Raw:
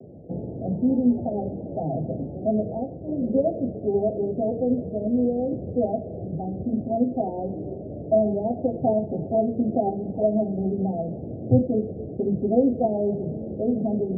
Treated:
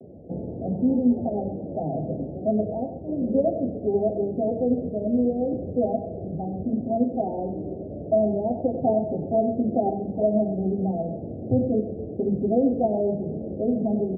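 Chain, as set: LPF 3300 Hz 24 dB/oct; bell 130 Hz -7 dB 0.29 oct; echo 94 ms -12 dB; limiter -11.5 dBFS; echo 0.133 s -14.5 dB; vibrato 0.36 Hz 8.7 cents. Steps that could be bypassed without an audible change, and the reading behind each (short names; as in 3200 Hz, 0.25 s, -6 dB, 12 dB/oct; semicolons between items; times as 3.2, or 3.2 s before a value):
LPF 3300 Hz: input band ends at 850 Hz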